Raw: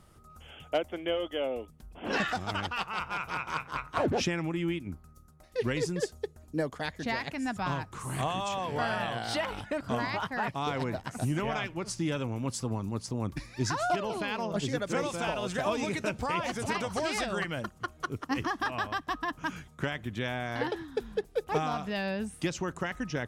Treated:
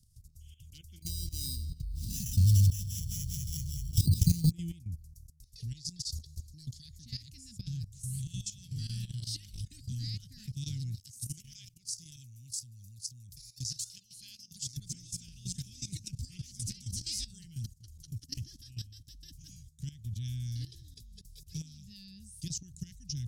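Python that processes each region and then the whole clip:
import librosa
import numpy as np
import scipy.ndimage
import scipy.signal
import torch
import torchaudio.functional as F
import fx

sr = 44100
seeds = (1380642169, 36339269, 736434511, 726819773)

y = fx.chain(x, sr, fx.bass_treble(bass_db=14, treble_db=0),
    fx.sample_hold(seeds[0], rate_hz=4400.0, jitter_pct=0),
    fx.echo_filtered(ms=199, feedback_pct=58, hz=3700.0, wet_db=-12.5), at=(1.02, 4.51))
y = fx.chain(y, sr, fx.peak_eq(hz=4200.0, db=11.5, octaves=1.1),
    fx.over_compress(threshold_db=-38.0, ratio=-1.0), at=(5.72, 6.85))
y = fx.chain(y, sr, fx.tilt_eq(slope=2.5),
    fx.level_steps(step_db=11), at=(10.95, 14.77))
y = scipy.signal.sosfilt(scipy.signal.cheby1(3, 1.0, [120.0, 5000.0], 'bandstop', fs=sr, output='sos'), y)
y = fx.dynamic_eq(y, sr, hz=380.0, q=0.71, threshold_db=-58.0, ratio=4.0, max_db=7)
y = fx.level_steps(y, sr, step_db=15)
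y = y * librosa.db_to_amplitude(9.0)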